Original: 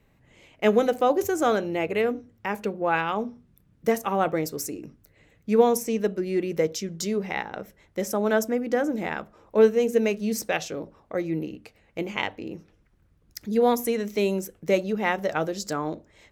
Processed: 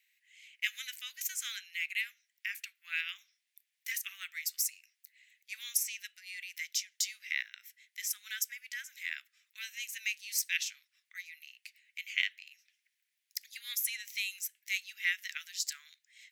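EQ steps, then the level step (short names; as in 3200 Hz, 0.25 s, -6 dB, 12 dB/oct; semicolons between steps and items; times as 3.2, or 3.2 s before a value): steep high-pass 1900 Hz 48 dB/oct; high shelf 11000 Hz +4.5 dB; 0.0 dB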